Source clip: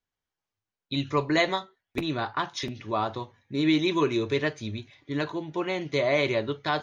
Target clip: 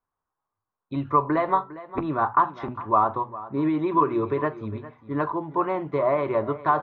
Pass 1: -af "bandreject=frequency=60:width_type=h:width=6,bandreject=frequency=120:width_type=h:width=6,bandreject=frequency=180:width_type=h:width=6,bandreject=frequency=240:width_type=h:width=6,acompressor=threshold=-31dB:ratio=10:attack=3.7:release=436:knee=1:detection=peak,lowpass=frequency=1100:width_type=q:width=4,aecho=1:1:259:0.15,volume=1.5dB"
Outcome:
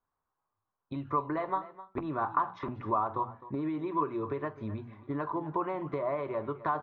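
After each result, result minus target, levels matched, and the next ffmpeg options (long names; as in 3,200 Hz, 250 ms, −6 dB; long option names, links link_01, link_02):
downward compressor: peak gain reduction +10 dB; echo 146 ms early
-af "bandreject=frequency=60:width_type=h:width=6,bandreject=frequency=120:width_type=h:width=6,bandreject=frequency=180:width_type=h:width=6,bandreject=frequency=240:width_type=h:width=6,acompressor=threshold=-20dB:ratio=10:attack=3.7:release=436:knee=1:detection=peak,lowpass=frequency=1100:width_type=q:width=4,aecho=1:1:259:0.15,volume=1.5dB"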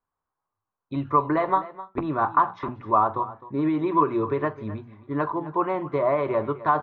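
echo 146 ms early
-af "bandreject=frequency=60:width_type=h:width=6,bandreject=frequency=120:width_type=h:width=6,bandreject=frequency=180:width_type=h:width=6,bandreject=frequency=240:width_type=h:width=6,acompressor=threshold=-20dB:ratio=10:attack=3.7:release=436:knee=1:detection=peak,lowpass=frequency=1100:width_type=q:width=4,aecho=1:1:405:0.15,volume=1.5dB"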